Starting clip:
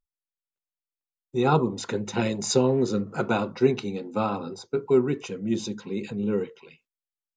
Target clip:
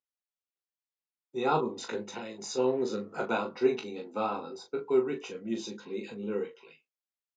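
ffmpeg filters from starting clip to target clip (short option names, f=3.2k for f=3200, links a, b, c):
-filter_complex "[0:a]asplit=3[a][b][c];[a]afade=t=out:st=2.03:d=0.02[d];[b]acompressor=threshold=-30dB:ratio=6,afade=t=in:st=2.03:d=0.02,afade=t=out:st=2.57:d=0.02[e];[c]afade=t=in:st=2.57:d=0.02[f];[d][e][f]amix=inputs=3:normalize=0,highpass=290,lowpass=6.5k,aecho=1:1:18|39:0.531|0.422,volume=-5.5dB"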